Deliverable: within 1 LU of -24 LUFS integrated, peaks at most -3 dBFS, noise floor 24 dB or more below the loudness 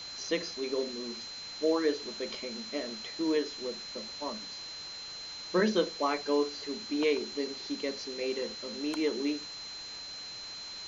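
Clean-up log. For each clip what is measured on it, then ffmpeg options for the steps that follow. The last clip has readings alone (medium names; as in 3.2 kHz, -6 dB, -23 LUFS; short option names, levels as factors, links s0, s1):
steady tone 4.1 kHz; tone level -41 dBFS; noise floor -43 dBFS; noise floor target -58 dBFS; loudness -33.5 LUFS; peak level -15.0 dBFS; loudness target -24.0 LUFS
-> -af "bandreject=f=4100:w=30"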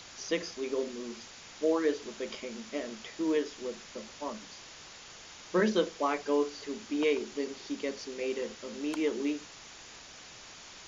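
steady tone not found; noise floor -50 dBFS; noise floor target -58 dBFS
-> -af "afftdn=nr=8:nf=-50"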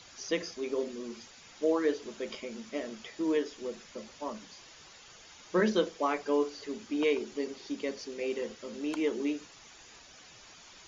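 noise floor -54 dBFS; noise floor target -58 dBFS
-> -af "afftdn=nr=6:nf=-54"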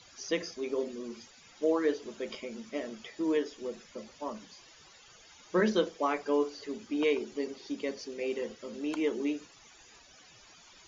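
noise floor -57 dBFS; noise floor target -58 dBFS
-> -af "afftdn=nr=6:nf=-57"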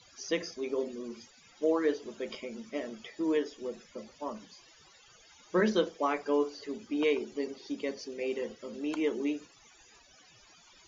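noise floor -60 dBFS; loudness -33.5 LUFS; peak level -15.0 dBFS; loudness target -24.0 LUFS
-> -af "volume=2.99"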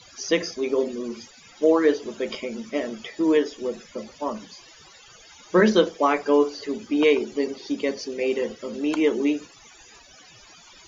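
loudness -24.0 LUFS; peak level -5.5 dBFS; noise floor -50 dBFS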